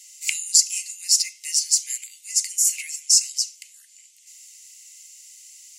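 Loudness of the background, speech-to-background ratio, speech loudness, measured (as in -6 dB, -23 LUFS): -31.0 LUFS, 11.0 dB, -20.0 LUFS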